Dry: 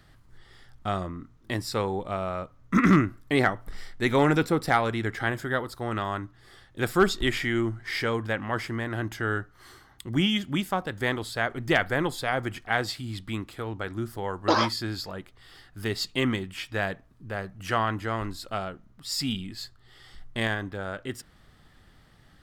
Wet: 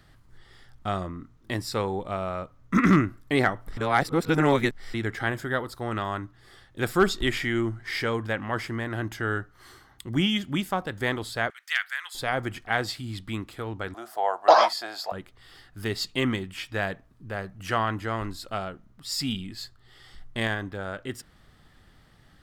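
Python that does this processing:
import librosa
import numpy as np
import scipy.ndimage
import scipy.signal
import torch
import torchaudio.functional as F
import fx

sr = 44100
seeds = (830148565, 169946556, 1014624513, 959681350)

y = fx.highpass(x, sr, hz=1500.0, slope=24, at=(11.5, 12.15))
y = fx.highpass_res(y, sr, hz=690.0, q=7.2, at=(13.94, 15.12))
y = fx.edit(y, sr, fx.reverse_span(start_s=3.77, length_s=1.17), tone=tone)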